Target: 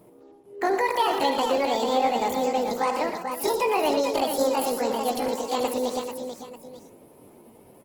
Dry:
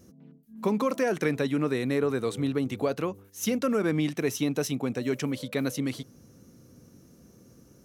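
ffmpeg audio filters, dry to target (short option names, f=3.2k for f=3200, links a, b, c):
-af "asetrate=80880,aresample=44100,atempo=0.545254,aecho=1:1:62|79|116|324|440|890:0.168|0.251|0.355|0.211|0.473|0.158,volume=2dB" -ar 48000 -c:a libopus -b:a 16k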